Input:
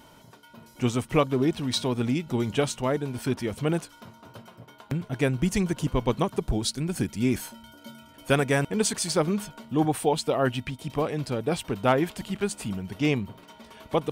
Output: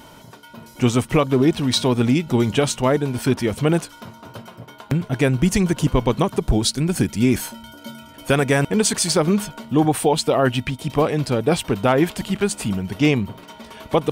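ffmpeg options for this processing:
-af "alimiter=limit=-15.5dB:level=0:latency=1:release=80,volume=8.5dB"

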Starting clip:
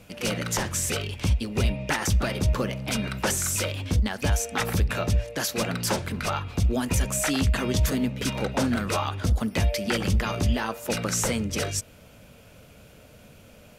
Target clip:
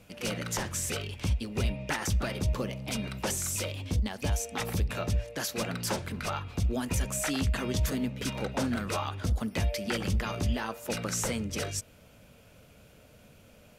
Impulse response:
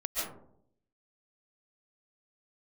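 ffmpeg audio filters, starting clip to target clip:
-filter_complex "[0:a]asettb=1/sr,asplit=3[a][b][c];[a]atrim=end=2.434[d];[b]atrim=start=2.43:end=4.97,asetpts=PTS-STARTPTS,afade=t=in:d=0.004:c=qsin,afade=t=out:st=2.536:d=0.004:c=qsin,equalizer=f=1.5k:t=o:w=0.63:g=-5.5[e];[c]atrim=start=4.966[f];[d][e]acrossfade=d=0.004:c1=hsin:c2=qsin[g];[g][f]acrossfade=d=0.004:c1=qsin:c2=hsin,volume=-5.5dB"

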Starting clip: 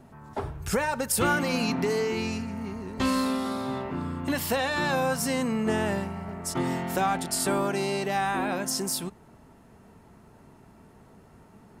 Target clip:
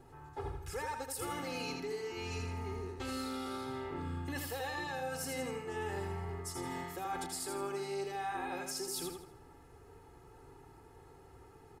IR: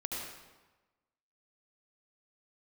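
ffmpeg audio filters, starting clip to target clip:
-af "aecho=1:1:2.4:0.98,areverse,acompressor=threshold=-31dB:ratio=6,areverse,aecho=1:1:81|162|243|324|405:0.562|0.214|0.0812|0.0309|0.0117,volume=-7dB"

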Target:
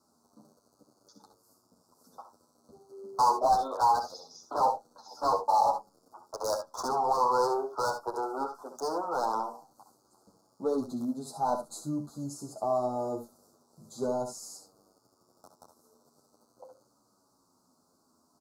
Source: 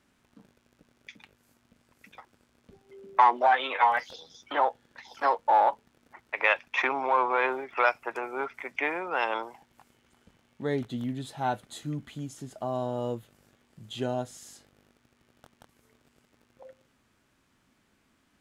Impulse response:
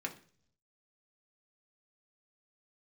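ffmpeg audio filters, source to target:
-filter_complex "[0:a]highpass=f=330:p=1,acrossover=split=3600[a][b];[a]asoftclip=type=hard:threshold=-25.5dB[c];[b]alimiter=level_in=10.5dB:limit=-24dB:level=0:latency=1:release=401,volume=-10.5dB[d];[c][d]amix=inputs=2:normalize=0,asuperstop=centerf=2400:order=12:qfactor=0.78,aecho=1:1:64|77:0.335|0.237,asplit=2[e][f];[1:a]atrim=start_sample=2205,asetrate=88200,aresample=44100[g];[f][g]afir=irnorm=-1:irlink=0,volume=-9dB[h];[e][h]amix=inputs=2:normalize=0,asplit=2[i][j];[j]adelay=9.4,afreqshift=-0.44[k];[i][k]amix=inputs=2:normalize=1,volume=5.5dB"

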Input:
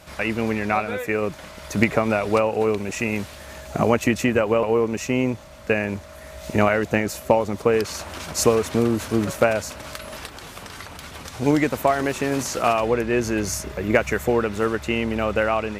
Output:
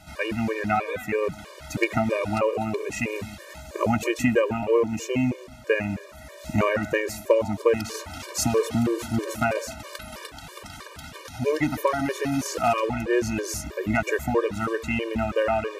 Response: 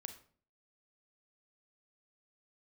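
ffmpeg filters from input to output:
-filter_complex "[0:a]asettb=1/sr,asplit=3[a][b][c];[a]atrim=end=11.244[d];[b]atrim=start=11.24:end=12.46,asetpts=PTS-STARTPTS,afade=t=in:d=0.004:c=qsin,afade=t=out:st=1.216:d=0.004:c=qsin,bandreject=f=7.7k:w=6.6[e];[c]atrim=start=12.456[f];[d][e]acrossfade=d=0.004:c1=hsin:c2=qsin[g];[g][f]acrossfade=d=0.004:c1=qsin:c2=hsin,asplit=2[h][i];[1:a]atrim=start_sample=2205,lowpass=2.9k,adelay=134[j];[i][j]afir=irnorm=-1:irlink=0,volume=-11.5dB[k];[h][k]amix=inputs=2:normalize=0,afftfilt=real='re*gt(sin(2*PI*3.1*pts/sr)*(1-2*mod(floor(b*sr/1024/310),2)),0)':imag='im*gt(sin(2*PI*3.1*pts/sr)*(1-2*mod(floor(b*sr/1024/310),2)),0)':win_size=1024:overlap=0.75"

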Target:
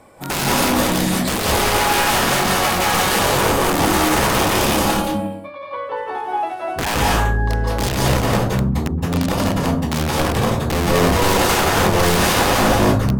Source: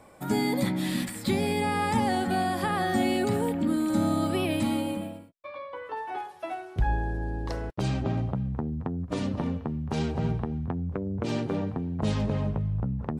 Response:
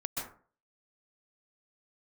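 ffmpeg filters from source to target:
-filter_complex "[0:a]asettb=1/sr,asplit=3[a][b][c];[a]atrim=end=10.704[d];[b]atrim=start=10.7:end=12.74,asetpts=PTS-STARTPTS,afade=t=in:d=0.004:c=qsin,afade=t=out:st=2.036:d=0.004:c=qsin,acontrast=66[e];[c]atrim=start=12.736[f];[d][e]acrossfade=d=0.004:c1=hsin:c2=qsin[g];[g][f]acrossfade=d=0.004:c1=qsin:c2=hsin,aeval=exprs='(mod(12.6*val(0)+1,2)-1)/12.6':c=same,bandreject=f=60:t=h:w=6,bandreject=f=120:t=h:w=6,bandreject=f=180:t=h:w=6[h];[1:a]atrim=start_sample=2205,afade=t=out:st=0.3:d=0.01,atrim=end_sample=13671,asetrate=32193,aresample=44100[i];[h][i]afir=irnorm=-1:irlink=0,volume=6dB"

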